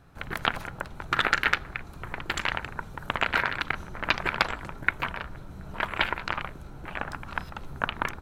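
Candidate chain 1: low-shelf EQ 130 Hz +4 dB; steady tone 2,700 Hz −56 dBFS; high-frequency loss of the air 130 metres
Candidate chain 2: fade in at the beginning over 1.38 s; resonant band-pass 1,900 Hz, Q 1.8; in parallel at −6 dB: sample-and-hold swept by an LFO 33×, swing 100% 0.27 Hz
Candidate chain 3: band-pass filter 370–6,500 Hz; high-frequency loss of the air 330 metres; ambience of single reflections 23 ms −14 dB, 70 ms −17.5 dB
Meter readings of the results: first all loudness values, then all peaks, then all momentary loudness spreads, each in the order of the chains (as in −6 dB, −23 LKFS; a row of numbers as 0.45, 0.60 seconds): −31.0, −32.0, −32.5 LKFS; −3.5, −2.5, −5.5 dBFS; 13, 16, 14 LU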